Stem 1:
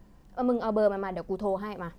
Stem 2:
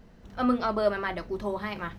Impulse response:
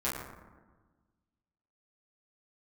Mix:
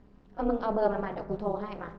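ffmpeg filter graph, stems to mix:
-filter_complex "[0:a]volume=0dB,asplit=2[link_01][link_02];[link_02]volume=-13.5dB[link_03];[1:a]acrusher=bits=6:mix=0:aa=0.5,adelay=3.2,volume=-17dB[link_04];[2:a]atrim=start_sample=2205[link_05];[link_03][link_05]afir=irnorm=-1:irlink=0[link_06];[link_01][link_04][link_06]amix=inputs=3:normalize=0,lowpass=4200,tremolo=f=220:d=0.974"

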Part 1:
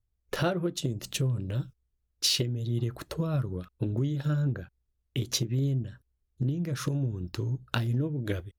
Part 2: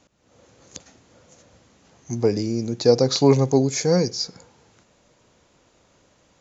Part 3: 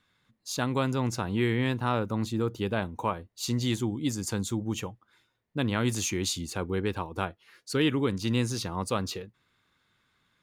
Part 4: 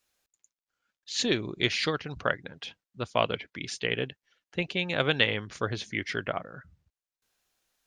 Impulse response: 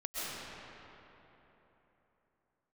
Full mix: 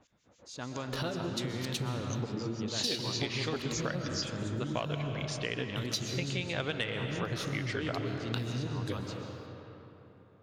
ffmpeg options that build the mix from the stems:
-filter_complex "[0:a]equalizer=frequency=4200:width=1.6:gain=9,adelay=600,volume=-8.5dB,asplit=2[link_01][link_02];[link_02]volume=-8dB[link_03];[1:a]acompressor=threshold=-24dB:ratio=6,acrossover=split=2100[link_04][link_05];[link_04]aeval=exprs='val(0)*(1-1/2+1/2*cos(2*PI*6.8*n/s))':channel_layout=same[link_06];[link_05]aeval=exprs='val(0)*(1-1/2-1/2*cos(2*PI*6.8*n/s))':channel_layout=same[link_07];[link_06][link_07]amix=inputs=2:normalize=0,volume=-2dB[link_08];[2:a]lowpass=frequency=7400:width=0.5412,lowpass=frequency=7400:width=1.3066,volume=-14dB,asplit=2[link_09][link_10];[link_10]volume=-4.5dB[link_11];[3:a]acontrast=78,adelay=1600,volume=-11dB,asplit=2[link_12][link_13];[link_13]volume=-11dB[link_14];[4:a]atrim=start_sample=2205[link_15];[link_03][link_11][link_14]amix=inputs=3:normalize=0[link_16];[link_16][link_15]afir=irnorm=-1:irlink=0[link_17];[link_01][link_08][link_09][link_12][link_17]amix=inputs=5:normalize=0,acompressor=threshold=-30dB:ratio=5"

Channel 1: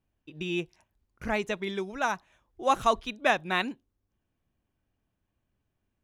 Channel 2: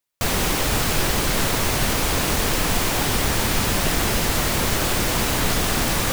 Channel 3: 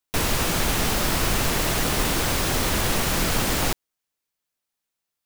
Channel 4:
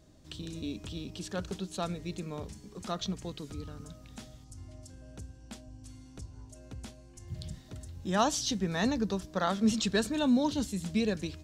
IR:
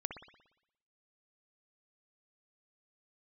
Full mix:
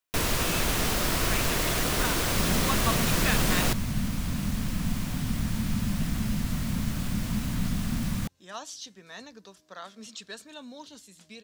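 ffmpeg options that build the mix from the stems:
-filter_complex "[0:a]highpass=1100,volume=-2.5dB[link_01];[1:a]lowshelf=frequency=290:width_type=q:width=3:gain=10.5,adelay=2150,volume=-16.5dB[link_02];[2:a]volume=-3.5dB[link_03];[3:a]highpass=frequency=1000:poles=1,adelay=350,volume=-8dB[link_04];[link_01][link_02][link_03][link_04]amix=inputs=4:normalize=0,bandreject=frequency=830:width=12"

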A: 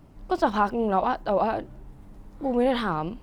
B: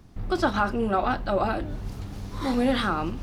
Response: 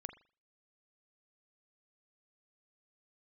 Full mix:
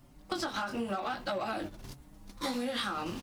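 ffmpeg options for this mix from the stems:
-filter_complex "[0:a]acompressor=threshold=-23dB:ratio=6,asoftclip=type=tanh:threshold=-31dB,asplit=2[link_01][link_02];[link_02]adelay=5.3,afreqshift=1.6[link_03];[link_01][link_03]amix=inputs=2:normalize=1,volume=-3.5dB,asplit=2[link_04][link_05];[1:a]highpass=170,acompressor=threshold=-24dB:ratio=6,flanger=delay=16:depth=7.2:speed=0.78,volume=-1,adelay=0.4,volume=2.5dB[link_06];[link_05]apad=whole_len=142151[link_07];[link_06][link_07]sidechaingate=range=-33dB:threshold=-46dB:ratio=16:detection=peak[link_08];[link_04][link_08]amix=inputs=2:normalize=0,highshelf=frequency=2700:gain=11.5,bandreject=frequency=420:width=12,acompressor=threshold=-31dB:ratio=6"

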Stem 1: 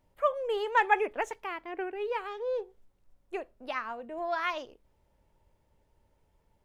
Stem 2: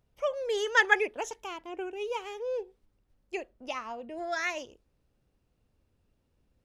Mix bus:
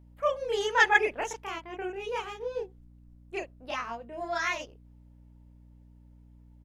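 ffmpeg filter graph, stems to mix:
ffmpeg -i stem1.wav -i stem2.wav -filter_complex "[0:a]aeval=exprs='val(0)+0.00316*(sin(2*PI*60*n/s)+sin(2*PI*2*60*n/s)/2+sin(2*PI*3*60*n/s)/3+sin(2*PI*4*60*n/s)/4+sin(2*PI*5*60*n/s)/5)':channel_layout=same,volume=-3dB,asplit=2[link_01][link_02];[1:a]equalizer=frequency=3600:width=0.33:gain=3,adelay=30,volume=-2dB[link_03];[link_02]apad=whole_len=294362[link_04];[link_03][link_04]sidechaingate=range=-33dB:threshold=-41dB:ratio=16:detection=peak[link_05];[link_01][link_05]amix=inputs=2:normalize=0" out.wav

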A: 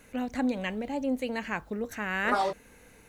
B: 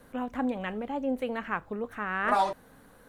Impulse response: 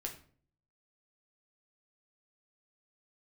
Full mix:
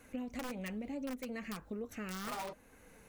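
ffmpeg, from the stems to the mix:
-filter_complex "[0:a]aeval=exprs='(mod(11.2*val(0)+1,2)-1)/11.2':channel_layout=same,volume=-0.5dB[link_01];[1:a]asoftclip=type=tanh:threshold=-22dB,volume=-6dB,asplit=2[link_02][link_03];[link_03]apad=whole_len=136094[link_04];[link_01][link_04]sidechaincompress=threshold=-40dB:ratio=8:attack=40:release=713[link_05];[link_05][link_02]amix=inputs=2:normalize=0,equalizer=frequency=3700:width_type=o:width=0.77:gain=-2.5,flanger=delay=2.6:depth=3.5:regen=-52:speed=1.1:shape=triangular,acompressor=threshold=-37dB:ratio=6"

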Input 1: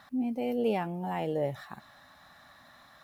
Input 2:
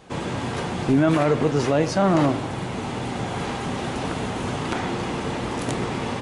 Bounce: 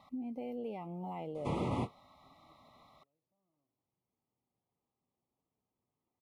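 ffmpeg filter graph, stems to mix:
ffmpeg -i stem1.wav -i stem2.wav -filter_complex "[0:a]acompressor=threshold=-35dB:ratio=6,volume=-3dB,asplit=2[link_01][link_02];[1:a]equalizer=frequency=9800:width_type=o:width=0.35:gain=11.5,acrossover=split=1900|5400[link_03][link_04][link_05];[link_03]acompressor=threshold=-21dB:ratio=4[link_06];[link_04]acompressor=threshold=-43dB:ratio=4[link_07];[link_05]acompressor=threshold=-51dB:ratio=4[link_08];[link_06][link_07][link_08]amix=inputs=3:normalize=0,adelay=1350,volume=-5.5dB[link_09];[link_02]apad=whole_len=333573[link_10];[link_09][link_10]sidechaingate=range=-56dB:threshold=-53dB:ratio=16:detection=peak[link_11];[link_01][link_11]amix=inputs=2:normalize=0,asuperstop=centerf=1600:order=20:qfactor=2.5,highshelf=frequency=3800:gain=-11.5" out.wav

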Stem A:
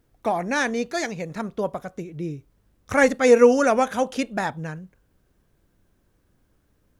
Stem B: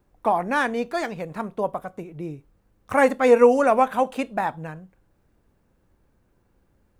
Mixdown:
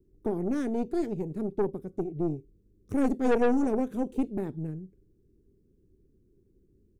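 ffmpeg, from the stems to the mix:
ffmpeg -i stem1.wav -i stem2.wav -filter_complex "[0:a]volume=-14.5dB[link_01];[1:a]equalizer=frequency=400:width=6.3:gain=6.5,volume=2.5dB[link_02];[link_01][link_02]amix=inputs=2:normalize=0,firequalizer=gain_entry='entry(220,0);entry(380,4);entry(670,-29);entry(2100,-22);entry(5700,-12)':delay=0.05:min_phase=1,aeval=exprs='(tanh(10*val(0)+0.6)-tanh(0.6))/10':channel_layout=same" out.wav

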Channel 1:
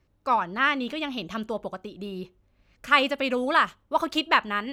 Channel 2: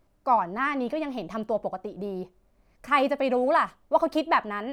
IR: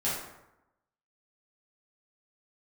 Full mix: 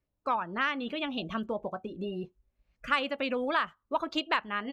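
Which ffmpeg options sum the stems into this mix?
-filter_complex "[0:a]aeval=exprs='0.596*(cos(1*acos(clip(val(0)/0.596,-1,1)))-cos(1*PI/2))+0.0168*(cos(7*acos(clip(val(0)/0.596,-1,1)))-cos(7*PI/2))':channel_layout=same,volume=2.5dB[link_01];[1:a]acompressor=threshold=-32dB:ratio=6,asplit=2[link_02][link_03];[link_03]afreqshift=2[link_04];[link_02][link_04]amix=inputs=2:normalize=1,adelay=18,volume=-4dB[link_05];[link_01][link_05]amix=inputs=2:normalize=0,afftdn=noise_reduction=17:noise_floor=-41,acompressor=threshold=-32dB:ratio=2"

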